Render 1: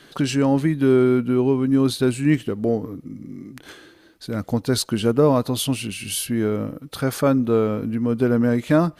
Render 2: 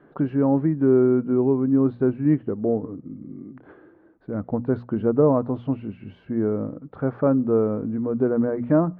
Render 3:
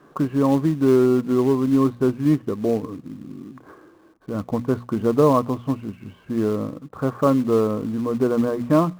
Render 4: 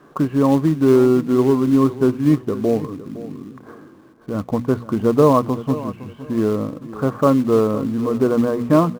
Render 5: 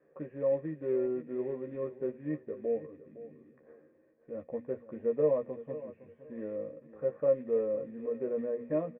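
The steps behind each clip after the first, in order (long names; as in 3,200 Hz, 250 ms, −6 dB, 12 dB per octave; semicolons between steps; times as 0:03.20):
Bessel low-pass filter 920 Hz, order 4; low-shelf EQ 82 Hz −8.5 dB; mains-hum notches 60/120/180/240 Hz
parametric band 1,100 Hz +14 dB 0.22 octaves; in parallel at −9.5 dB: log-companded quantiser 4 bits; on the sum: level −1.5 dB
repeating echo 511 ms, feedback 25%, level −15.5 dB; level +3 dB
formant resonators in series e; double-tracking delay 13 ms −4 dB; level −7 dB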